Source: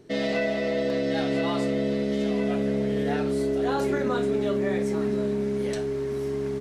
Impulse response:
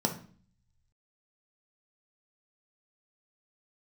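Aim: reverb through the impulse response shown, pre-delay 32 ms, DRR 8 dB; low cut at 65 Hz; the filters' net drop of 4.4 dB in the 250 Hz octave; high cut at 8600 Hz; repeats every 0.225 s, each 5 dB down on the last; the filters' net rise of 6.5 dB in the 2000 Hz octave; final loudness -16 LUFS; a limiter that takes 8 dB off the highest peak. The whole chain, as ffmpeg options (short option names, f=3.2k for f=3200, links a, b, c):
-filter_complex "[0:a]highpass=65,lowpass=8.6k,equalizer=f=250:t=o:g=-5.5,equalizer=f=2k:t=o:g=7.5,alimiter=limit=-21.5dB:level=0:latency=1,aecho=1:1:225|450|675|900|1125|1350|1575:0.562|0.315|0.176|0.0988|0.0553|0.031|0.0173,asplit=2[a][b];[1:a]atrim=start_sample=2205,adelay=32[c];[b][c]afir=irnorm=-1:irlink=0,volume=-15.5dB[d];[a][d]amix=inputs=2:normalize=0,volume=11.5dB"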